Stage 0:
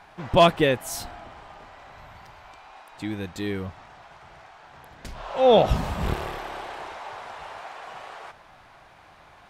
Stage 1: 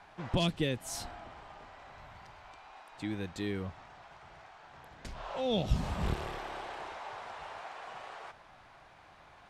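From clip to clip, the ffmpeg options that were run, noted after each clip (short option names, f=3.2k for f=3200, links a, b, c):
-filter_complex "[0:a]lowpass=9.8k,acrossover=split=310|3000[a][b][c];[b]acompressor=threshold=-31dB:ratio=6[d];[a][d][c]amix=inputs=3:normalize=0,volume=-5.5dB"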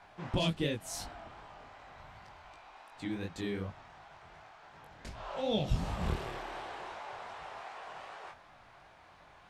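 -af "flanger=delay=18.5:depth=6.5:speed=2.7,volume=2dB"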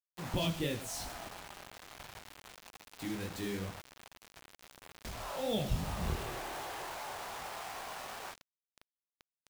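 -filter_complex "[0:a]aeval=exprs='val(0)+0.5*0.00631*sgn(val(0))':c=same,asplit=2[a][b];[b]adelay=99.13,volume=-15dB,highshelf=f=4k:g=-2.23[c];[a][c]amix=inputs=2:normalize=0,acrusher=bits=6:mix=0:aa=0.000001,volume=-3dB"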